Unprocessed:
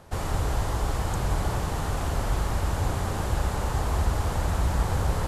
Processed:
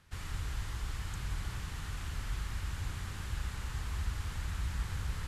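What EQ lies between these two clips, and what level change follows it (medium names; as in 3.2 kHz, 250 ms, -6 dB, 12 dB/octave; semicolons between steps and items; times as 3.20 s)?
amplifier tone stack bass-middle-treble 6-0-2; peaking EQ 1.9 kHz +10.5 dB 2.7 oct; +1.5 dB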